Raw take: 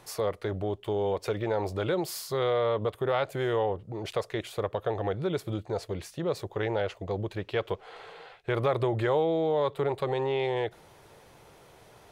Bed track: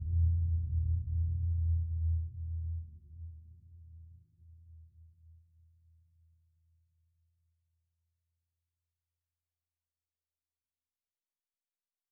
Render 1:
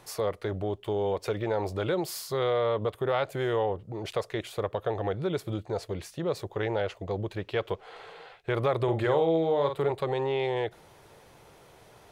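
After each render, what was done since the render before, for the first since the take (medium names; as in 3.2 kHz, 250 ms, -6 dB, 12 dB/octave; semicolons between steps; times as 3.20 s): 8.83–9.91 s: doubling 49 ms -7 dB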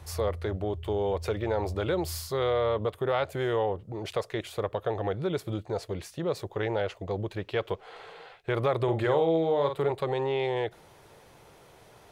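add bed track -8.5 dB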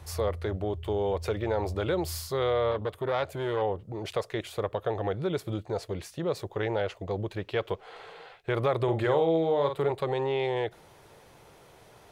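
2.71–3.62 s: transformer saturation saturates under 810 Hz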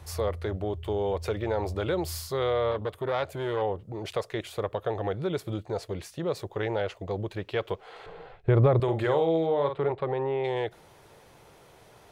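8.06–8.80 s: tilt EQ -4 dB/octave; 9.46–10.43 s: low-pass 3.8 kHz -> 1.6 kHz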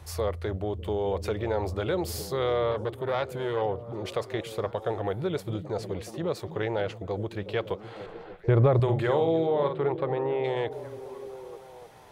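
repeats whose band climbs or falls 300 ms, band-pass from 150 Hz, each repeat 0.7 oct, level -6.5 dB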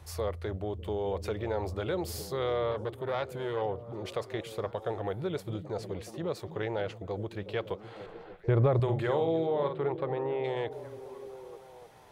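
trim -4 dB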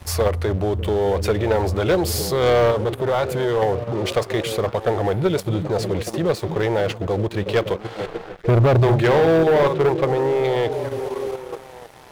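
in parallel at +3 dB: level held to a coarse grid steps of 15 dB; on the sum: waveshaping leveller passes 3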